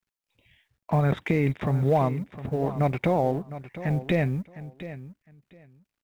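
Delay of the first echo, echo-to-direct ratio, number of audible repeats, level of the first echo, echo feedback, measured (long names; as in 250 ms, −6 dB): 708 ms, −14.0 dB, 2, −14.0 dB, 18%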